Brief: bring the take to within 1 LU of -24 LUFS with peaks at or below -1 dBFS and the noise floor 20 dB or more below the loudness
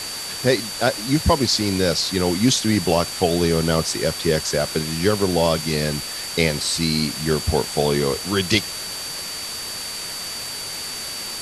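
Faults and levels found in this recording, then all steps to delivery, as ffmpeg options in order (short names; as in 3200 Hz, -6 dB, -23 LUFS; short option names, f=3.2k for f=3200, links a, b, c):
steady tone 4600 Hz; tone level -31 dBFS; noise floor -30 dBFS; noise floor target -41 dBFS; loudness -21.0 LUFS; peak -3.5 dBFS; loudness target -24.0 LUFS
-> -af "bandreject=f=4.6k:w=30"
-af "afftdn=nr=11:nf=-30"
-af "volume=-3dB"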